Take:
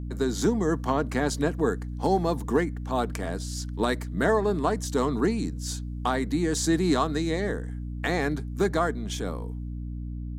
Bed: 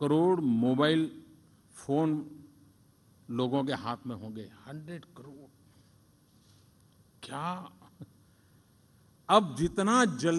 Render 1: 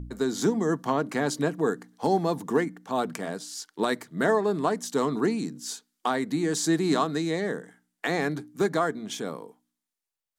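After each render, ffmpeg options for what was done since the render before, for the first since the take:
-af "bandreject=f=60:t=h:w=4,bandreject=f=120:t=h:w=4,bandreject=f=180:t=h:w=4,bandreject=f=240:t=h:w=4,bandreject=f=300:t=h:w=4"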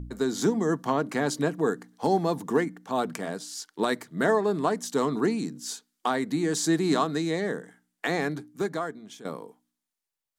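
-filter_complex "[0:a]asplit=2[a][b];[a]atrim=end=9.25,asetpts=PTS-STARTPTS,afade=t=out:st=8.08:d=1.17:silence=0.211349[c];[b]atrim=start=9.25,asetpts=PTS-STARTPTS,afade=t=in:d=0.004:c=hsin:silence=0.211349[d];[c][d]concat=n=2:v=0:a=1"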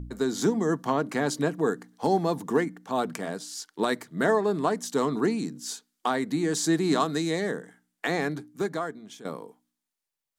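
-filter_complex "[0:a]asettb=1/sr,asplit=3[a][b][c];[a]atrim=end=7.004[d];[b]atrim=start=7:end=7.51,asetpts=PTS-STARTPTS,afade=t=in:d=0.004:c=qsin,afade=t=out:st=0.506:d=0.004:c=qsin,highshelf=f=4.7k:g=6.5[e];[c]atrim=start=7.506[f];[d][e]acrossfade=d=0.004:c1=hsin:c2=qsin[g];[g][f]acrossfade=d=0.004:c1=qsin:c2=hsin"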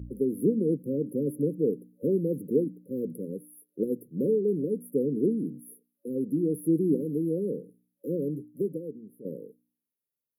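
-af "highpass=56,afftfilt=real='re*(1-between(b*sr/4096,570,10000))':imag='im*(1-between(b*sr/4096,570,10000))':win_size=4096:overlap=0.75"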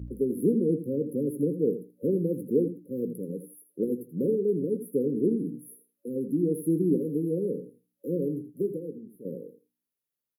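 -filter_complex "[0:a]asplit=2[a][b];[b]adelay=17,volume=-11.5dB[c];[a][c]amix=inputs=2:normalize=0,aecho=1:1:81|162:0.251|0.0427"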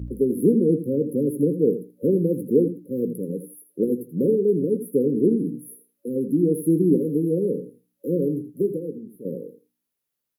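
-af "volume=6dB"

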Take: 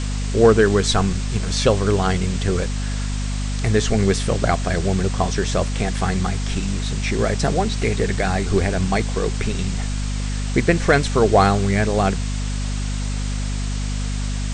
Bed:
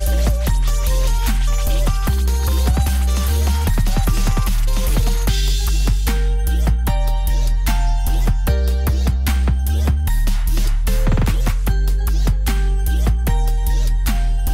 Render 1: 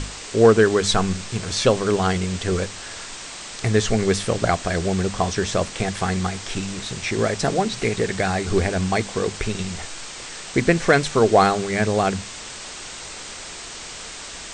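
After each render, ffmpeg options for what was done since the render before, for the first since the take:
-af "bandreject=f=50:t=h:w=6,bandreject=f=100:t=h:w=6,bandreject=f=150:t=h:w=6,bandreject=f=200:t=h:w=6,bandreject=f=250:t=h:w=6"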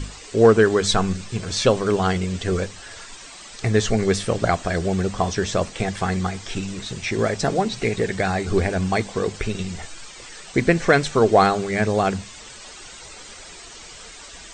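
-af "afftdn=nr=10:nf=-36"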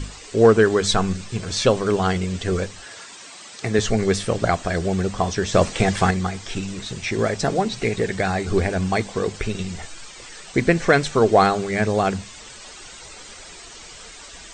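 -filter_complex "[0:a]asettb=1/sr,asplit=3[a][b][c];[a]atrim=end=2.854[d];[b]atrim=start=2.85:end=3.79,asetpts=PTS-STARTPTS,afade=t=in:d=0.004:c=qsin,afade=t=out:st=0.936:d=0.004:c=qsin,highpass=150[e];[c]atrim=start=3.786[f];[d][e]acrossfade=d=0.004:c1=hsin:c2=qsin[g];[g][f]acrossfade=d=0.004:c1=qsin:c2=hsin,asettb=1/sr,asplit=3[h][i][j];[h]atrim=end=5.544[k];[i]atrim=start=5.54:end=6.11,asetpts=PTS-STARTPTS,afade=t=in:d=0.004:c=qsin,afade=t=out:st=0.566:d=0.004:c=qsin,acontrast=51[l];[j]atrim=start=6.106[m];[k][l]acrossfade=d=0.004:c1=hsin:c2=qsin[n];[n][m]acrossfade=d=0.004:c1=qsin:c2=hsin"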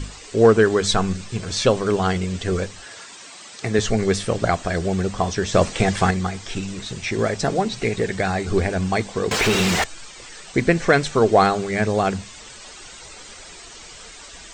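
-filter_complex "[0:a]asettb=1/sr,asplit=3[a][b][c];[a]atrim=end=9.314[d];[b]atrim=start=9.31:end=9.84,asetpts=PTS-STARTPTS,afade=t=in:d=0.004:c=qsin,afade=t=out:st=0.526:d=0.004:c=qsin,asplit=2[e][f];[f]highpass=f=720:p=1,volume=38dB,asoftclip=type=tanh:threshold=-9.5dB[g];[e][g]amix=inputs=2:normalize=0,lowpass=f=2.6k:p=1,volume=-6dB[h];[c]atrim=start=9.836[i];[d][h]acrossfade=d=0.004:c1=hsin:c2=qsin[j];[j][i]acrossfade=d=0.004:c1=qsin:c2=hsin"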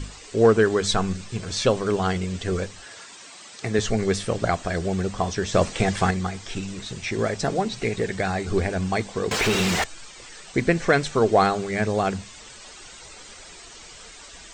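-af "volume=-3dB"

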